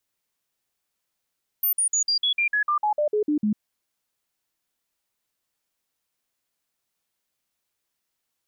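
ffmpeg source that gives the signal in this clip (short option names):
-f lavfi -i "aevalsrc='0.112*clip(min(mod(t,0.15),0.1-mod(t,0.15))/0.005,0,1)*sin(2*PI*13500*pow(2,-floor(t/0.15)/2)*mod(t,0.15))':d=1.95:s=44100"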